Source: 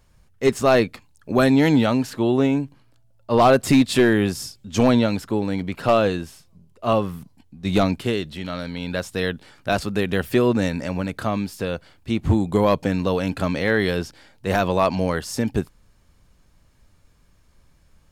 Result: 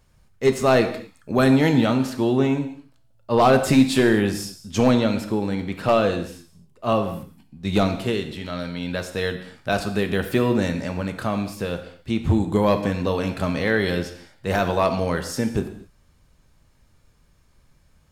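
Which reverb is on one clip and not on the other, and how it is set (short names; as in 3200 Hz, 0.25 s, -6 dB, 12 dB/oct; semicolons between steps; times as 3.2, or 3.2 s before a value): non-linear reverb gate 0.28 s falling, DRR 6.5 dB; gain -1.5 dB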